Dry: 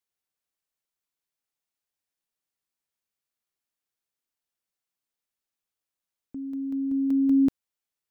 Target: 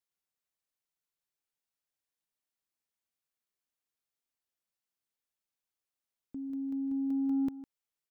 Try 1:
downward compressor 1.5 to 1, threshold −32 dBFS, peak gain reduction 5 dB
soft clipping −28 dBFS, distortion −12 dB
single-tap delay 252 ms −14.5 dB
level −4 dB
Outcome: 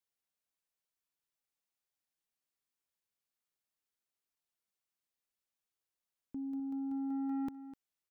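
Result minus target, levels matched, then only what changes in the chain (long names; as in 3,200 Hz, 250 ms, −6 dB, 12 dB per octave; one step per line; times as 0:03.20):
echo 97 ms late; soft clipping: distortion +10 dB
change: soft clipping −20.5 dBFS, distortion −23 dB
change: single-tap delay 155 ms −14.5 dB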